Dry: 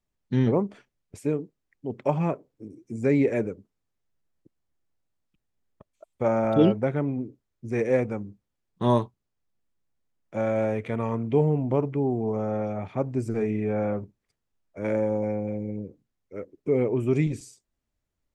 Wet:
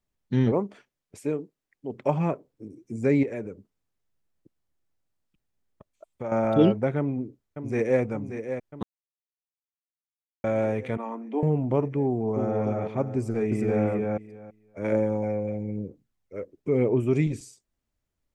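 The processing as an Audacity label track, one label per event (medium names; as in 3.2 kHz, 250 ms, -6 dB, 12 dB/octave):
0.520000	1.940000	bass shelf 140 Hz -11 dB
3.230000	6.320000	compression 2:1, threshold -35 dBFS
6.980000	8.010000	echo throw 580 ms, feedback 70%, level -9 dB
8.830000	10.440000	mute
10.970000	11.430000	rippled Chebyshev high-pass 210 Hz, ripple 9 dB
12.070000	12.580000	echo throw 290 ms, feedback 40%, level -3.5 dB
13.180000	13.840000	echo throw 330 ms, feedback 15%, level -1.5 dB
14.920000	17.010000	phaser 1 Hz, delay 2 ms, feedback 28%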